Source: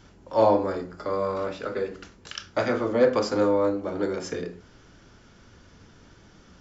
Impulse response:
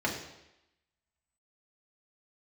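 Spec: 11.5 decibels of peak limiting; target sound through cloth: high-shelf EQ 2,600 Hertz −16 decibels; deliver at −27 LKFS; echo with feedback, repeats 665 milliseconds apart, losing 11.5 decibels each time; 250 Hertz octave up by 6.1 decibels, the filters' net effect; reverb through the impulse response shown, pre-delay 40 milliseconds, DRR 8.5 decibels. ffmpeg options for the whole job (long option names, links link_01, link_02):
-filter_complex "[0:a]equalizer=frequency=250:width_type=o:gain=8,alimiter=limit=-17dB:level=0:latency=1,aecho=1:1:665|1330|1995:0.266|0.0718|0.0194,asplit=2[link_01][link_02];[1:a]atrim=start_sample=2205,adelay=40[link_03];[link_02][link_03]afir=irnorm=-1:irlink=0,volume=-17.5dB[link_04];[link_01][link_04]amix=inputs=2:normalize=0,highshelf=frequency=2600:gain=-16"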